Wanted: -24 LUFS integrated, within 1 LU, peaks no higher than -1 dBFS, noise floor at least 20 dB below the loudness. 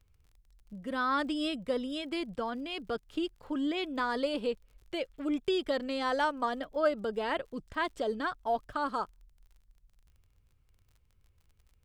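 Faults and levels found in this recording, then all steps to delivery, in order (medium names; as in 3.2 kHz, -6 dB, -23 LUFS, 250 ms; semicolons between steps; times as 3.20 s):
tick rate 36 per s; loudness -33.5 LUFS; peak level -15.5 dBFS; loudness target -24.0 LUFS
-> de-click; trim +9.5 dB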